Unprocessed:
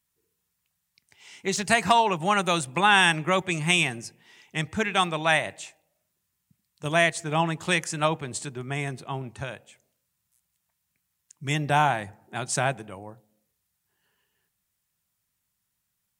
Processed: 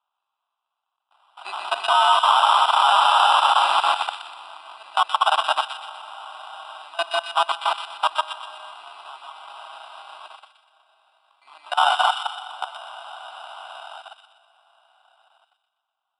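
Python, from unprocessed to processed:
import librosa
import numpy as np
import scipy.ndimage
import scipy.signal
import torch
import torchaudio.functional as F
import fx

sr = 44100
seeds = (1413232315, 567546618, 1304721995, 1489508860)

p1 = fx.rev_freeverb(x, sr, rt60_s=3.9, hf_ratio=0.9, predelay_ms=90, drr_db=-4.0)
p2 = 10.0 ** (-12.5 / 20.0) * (np.abs((p1 / 10.0 ** (-12.5 / 20.0) + 3.0) % 4.0 - 2.0) - 1.0)
p3 = p1 + (p2 * 10.0 ** (-12.0 / 20.0))
p4 = fx.sample_hold(p3, sr, seeds[0], rate_hz=2200.0, jitter_pct=0)
p5 = scipy.signal.sosfilt(scipy.signal.butter(16, 10000.0, 'lowpass', fs=sr, output='sos'), p4)
p6 = fx.fixed_phaser(p5, sr, hz=1800.0, stages=6)
p7 = fx.level_steps(p6, sr, step_db=21)
p8 = scipy.signal.sosfilt(scipy.signal.cheby2(4, 70, 160.0, 'highpass', fs=sr, output='sos'), p7)
p9 = fx.high_shelf(p8, sr, hz=4200.0, db=-10.5)
p10 = fx.echo_wet_highpass(p9, sr, ms=123, feedback_pct=46, hz=1800.0, wet_db=-5.5)
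p11 = fx.env_flatten(p10, sr, amount_pct=50, at=(1.37, 1.89))
y = p11 * 10.0 ** (7.5 / 20.0)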